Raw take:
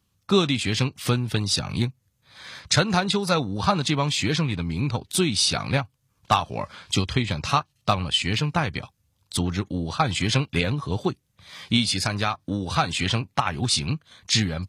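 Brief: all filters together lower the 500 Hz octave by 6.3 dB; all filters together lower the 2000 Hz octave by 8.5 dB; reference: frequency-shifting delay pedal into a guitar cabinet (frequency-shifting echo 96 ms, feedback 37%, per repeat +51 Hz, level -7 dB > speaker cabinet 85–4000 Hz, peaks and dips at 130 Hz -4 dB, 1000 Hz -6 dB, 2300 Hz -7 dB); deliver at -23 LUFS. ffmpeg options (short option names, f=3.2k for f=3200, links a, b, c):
-filter_complex "[0:a]equalizer=f=500:t=o:g=-8,equalizer=f=2k:t=o:g=-7.5,asplit=5[a][b][c][d][e];[b]adelay=96,afreqshift=51,volume=-7dB[f];[c]adelay=192,afreqshift=102,volume=-15.6dB[g];[d]adelay=288,afreqshift=153,volume=-24.3dB[h];[e]adelay=384,afreqshift=204,volume=-32.9dB[i];[a][f][g][h][i]amix=inputs=5:normalize=0,highpass=85,equalizer=f=130:t=q:w=4:g=-4,equalizer=f=1k:t=q:w=4:g=-6,equalizer=f=2.3k:t=q:w=4:g=-7,lowpass=f=4k:w=0.5412,lowpass=f=4k:w=1.3066,volume=5dB"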